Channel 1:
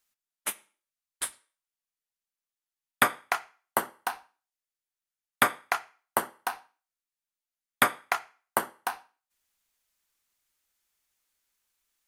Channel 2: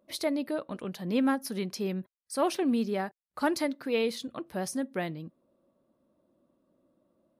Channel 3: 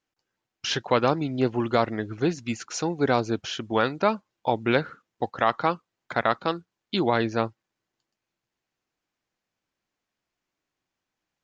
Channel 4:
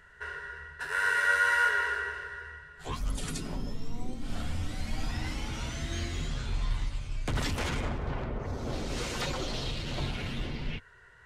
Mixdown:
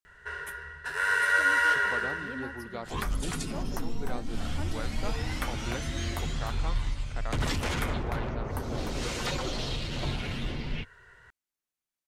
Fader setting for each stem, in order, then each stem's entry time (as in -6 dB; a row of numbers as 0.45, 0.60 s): -15.0, -15.5, -17.0, +1.5 dB; 0.00, 1.15, 1.00, 0.05 s